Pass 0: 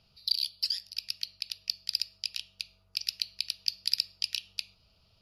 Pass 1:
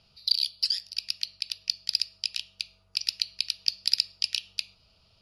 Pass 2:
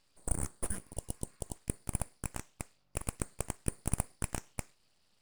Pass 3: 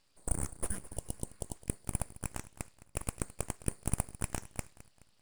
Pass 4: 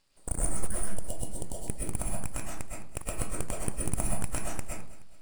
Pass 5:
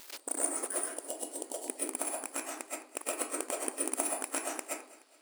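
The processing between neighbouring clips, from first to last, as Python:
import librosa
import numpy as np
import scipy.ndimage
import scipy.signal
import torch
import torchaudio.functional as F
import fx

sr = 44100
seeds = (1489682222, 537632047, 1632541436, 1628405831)

y1 = scipy.signal.sosfilt(scipy.signal.butter(6, 11000.0, 'lowpass', fs=sr, output='sos'), x)
y1 = fx.low_shelf(y1, sr, hz=320.0, db=-3.0)
y1 = F.gain(torch.from_numpy(y1), 4.0).numpy()
y2 = np.abs(y1)
y2 = fx.spec_repair(y2, sr, seeds[0], start_s=0.83, length_s=0.7, low_hz=1000.0, high_hz=2800.0, source='after')
y2 = F.gain(torch.from_numpy(y2), -7.0).numpy()
y3 = fx.echo_feedback(y2, sr, ms=212, feedback_pct=44, wet_db=-17.5)
y4 = fx.rev_freeverb(y3, sr, rt60_s=0.48, hf_ratio=0.55, predelay_ms=85, drr_db=-3.5)
y5 = y4 + 0.5 * 10.0 ** (-36.5 / 20.0) * np.sign(y4)
y5 = fx.brickwall_highpass(y5, sr, low_hz=250.0)
y5 = F.gain(torch.from_numpy(y5), 1.5).numpy()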